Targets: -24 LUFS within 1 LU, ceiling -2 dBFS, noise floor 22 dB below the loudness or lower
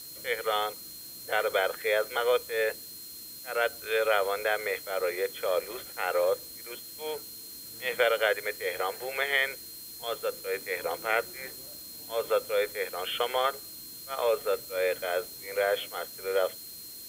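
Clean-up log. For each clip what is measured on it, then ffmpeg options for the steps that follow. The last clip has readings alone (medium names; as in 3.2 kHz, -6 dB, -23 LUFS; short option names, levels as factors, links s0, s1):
steady tone 4.2 kHz; tone level -47 dBFS; noise floor -44 dBFS; noise floor target -52 dBFS; loudness -30.0 LUFS; peak level -11.0 dBFS; loudness target -24.0 LUFS
-> -af "bandreject=f=4200:w=30"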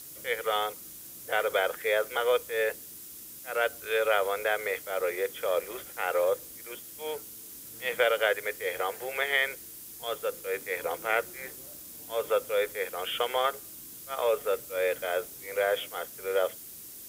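steady tone not found; noise floor -46 dBFS; noise floor target -52 dBFS
-> -af "afftdn=nr=6:nf=-46"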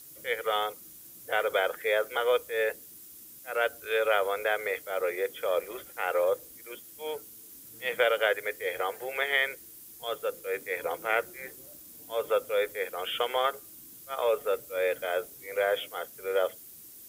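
noise floor -49 dBFS; noise floor target -52 dBFS
-> -af "afftdn=nr=6:nf=-49"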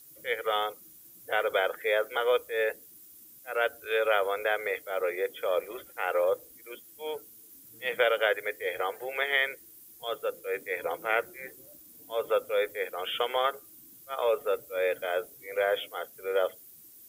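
noise floor -53 dBFS; loudness -30.0 LUFS; peak level -11.0 dBFS; loudness target -24.0 LUFS
-> -af "volume=2"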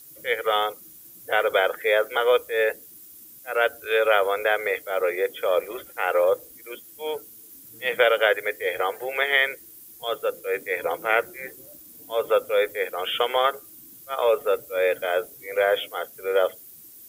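loudness -24.0 LUFS; peak level -5.0 dBFS; noise floor -47 dBFS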